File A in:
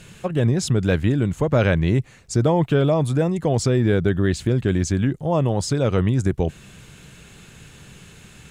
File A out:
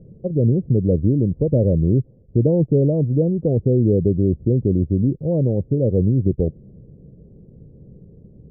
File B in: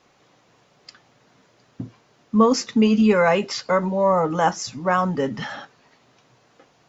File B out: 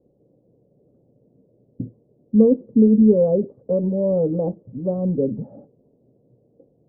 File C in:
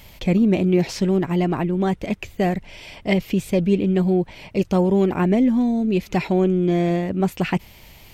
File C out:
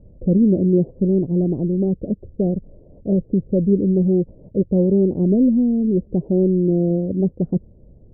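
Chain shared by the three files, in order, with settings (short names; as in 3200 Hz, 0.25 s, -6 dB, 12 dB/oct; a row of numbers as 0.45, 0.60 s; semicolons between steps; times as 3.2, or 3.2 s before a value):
elliptic low-pass 530 Hz, stop band 80 dB; match loudness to -19 LUFS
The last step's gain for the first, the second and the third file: +2.5, +3.0, +2.5 dB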